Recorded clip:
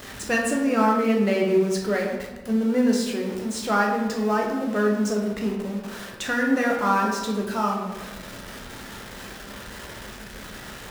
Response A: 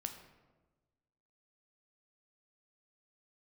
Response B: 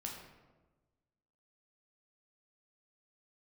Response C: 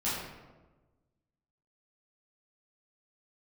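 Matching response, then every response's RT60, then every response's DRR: B; 1.2, 1.2, 1.2 s; 5.5, -1.0, -10.5 dB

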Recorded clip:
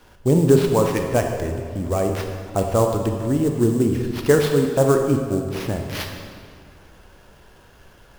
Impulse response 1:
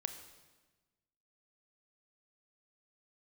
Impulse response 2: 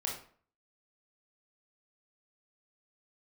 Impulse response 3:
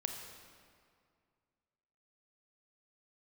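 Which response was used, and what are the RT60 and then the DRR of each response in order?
3; 1.2, 0.50, 2.2 s; 8.0, -2.0, 3.5 dB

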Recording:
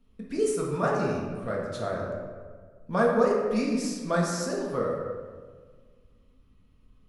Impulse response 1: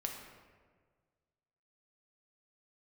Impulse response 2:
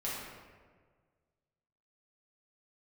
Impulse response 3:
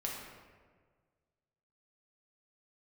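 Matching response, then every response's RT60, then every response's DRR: 3; 1.6, 1.6, 1.6 s; 1.0, -8.0, -3.0 dB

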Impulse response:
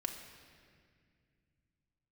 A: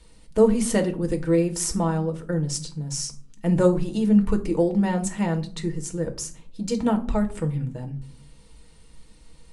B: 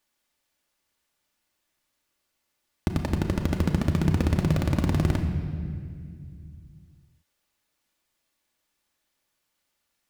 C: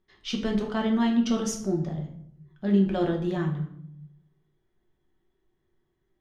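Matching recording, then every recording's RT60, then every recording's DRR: B; 0.45, 2.1, 0.65 s; 4.0, 2.5, 0.5 dB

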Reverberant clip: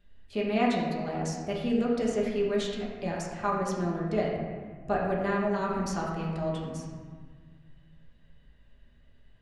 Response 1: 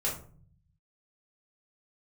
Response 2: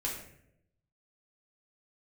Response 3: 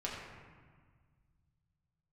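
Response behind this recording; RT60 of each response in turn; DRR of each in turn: 3; 0.45, 0.75, 1.6 s; -6.0, -4.0, -5.0 dB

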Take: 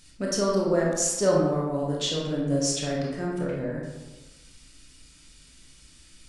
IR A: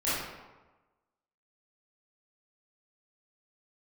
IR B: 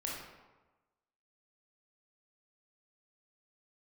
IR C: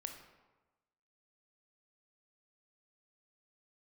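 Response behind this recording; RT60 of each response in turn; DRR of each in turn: B; 1.2, 1.2, 1.2 s; -12.5, -4.0, 4.5 dB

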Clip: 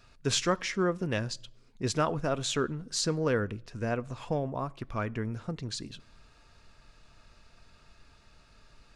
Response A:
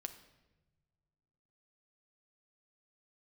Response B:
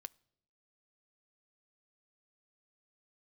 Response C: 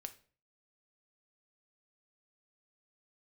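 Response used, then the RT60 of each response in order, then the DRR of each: B; not exponential, not exponential, 0.45 s; 7.5, 14.5, 8.0 dB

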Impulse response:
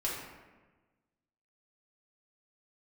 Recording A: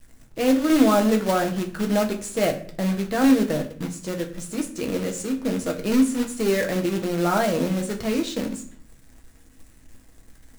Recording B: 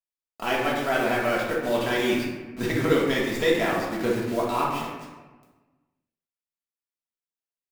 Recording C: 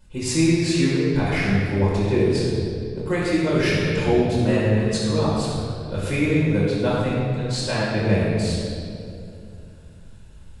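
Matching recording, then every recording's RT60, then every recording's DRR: B; 0.55, 1.3, 2.6 s; 2.5, -5.5, -8.5 dB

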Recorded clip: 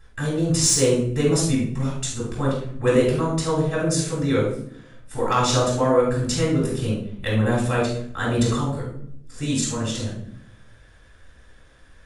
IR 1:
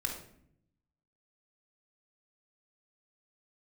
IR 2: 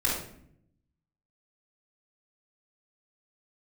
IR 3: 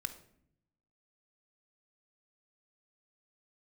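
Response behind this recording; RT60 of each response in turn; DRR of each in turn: 2; 0.65, 0.65, 0.70 s; 0.0, -8.0, 8.0 dB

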